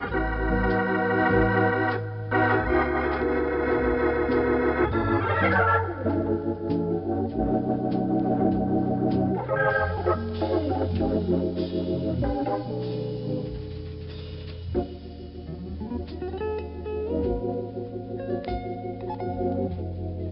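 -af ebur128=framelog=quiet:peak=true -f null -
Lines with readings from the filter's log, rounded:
Integrated loudness:
  I:         -25.8 LUFS
  Threshold: -36.2 LUFS
Loudness range:
  LRA:         9.2 LU
  Threshold: -46.2 LUFS
  LRA low:   -32.7 LUFS
  LRA high:  -23.6 LUFS
True peak:
  Peak:       -8.5 dBFS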